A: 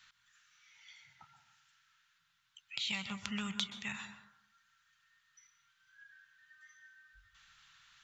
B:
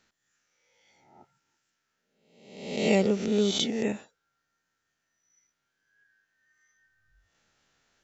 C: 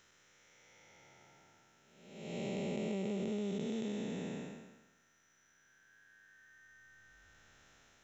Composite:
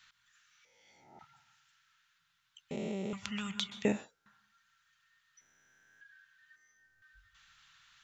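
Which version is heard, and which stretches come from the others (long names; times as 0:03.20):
A
0:00.65–0:01.19: punch in from B
0:02.71–0:03.13: punch in from C
0:03.85–0:04.26: punch in from B
0:05.41–0:06.01: punch in from C
0:06.56–0:07.02: punch in from B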